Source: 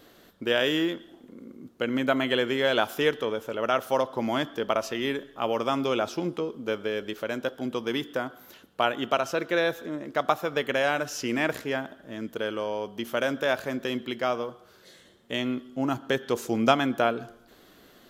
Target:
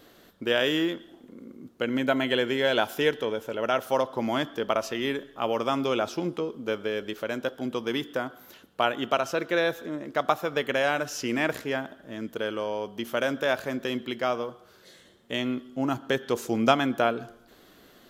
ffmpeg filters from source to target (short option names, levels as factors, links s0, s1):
-filter_complex "[0:a]asettb=1/sr,asplit=3[s0][s1][s2];[s0]atrim=end=1.854[s3];[s1]atrim=start=1.85:end=3.86,asetpts=PTS-STARTPTS,afade=t=in:d=0.004:c=qsin,afade=t=out:st=2.006:d=0.004:c=qsin,bandreject=f=1200:w=8.1[s4];[s2]atrim=start=3.856[s5];[s3][s4]acrossfade=d=0.004:c1=hsin:c2=qsin[s6];[s6][s5]acrossfade=d=0.004:c1=qsin:c2=hsin"